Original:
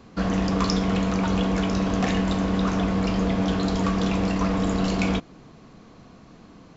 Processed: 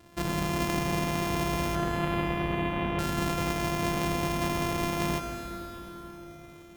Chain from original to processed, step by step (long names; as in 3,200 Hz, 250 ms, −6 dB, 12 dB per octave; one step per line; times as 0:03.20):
samples sorted by size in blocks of 128 samples
0:01.75–0:02.99: Butterworth low-pass 3,400 Hz 48 dB per octave
dense smooth reverb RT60 4.8 s, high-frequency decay 0.75×, DRR 5 dB
level −6.5 dB